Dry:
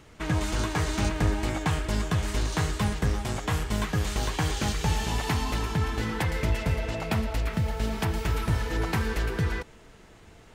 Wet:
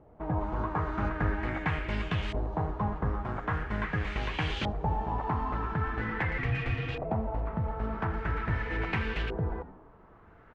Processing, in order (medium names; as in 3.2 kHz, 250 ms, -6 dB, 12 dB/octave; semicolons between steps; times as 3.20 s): frequency-shifting echo 82 ms, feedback 49%, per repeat -120 Hz, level -15.5 dB; 6.38–7.05 s: frequency shift -180 Hz; LFO low-pass saw up 0.43 Hz 690–3100 Hz; trim -5 dB